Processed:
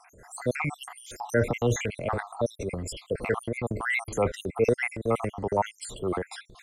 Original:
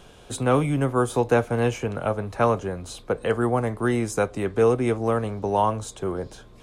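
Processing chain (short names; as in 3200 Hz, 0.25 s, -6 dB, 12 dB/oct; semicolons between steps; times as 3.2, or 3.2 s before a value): random spectral dropouts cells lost 71%; bell 2000 Hz +13 dB 0.25 oct; transient shaper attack -4 dB, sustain +9 dB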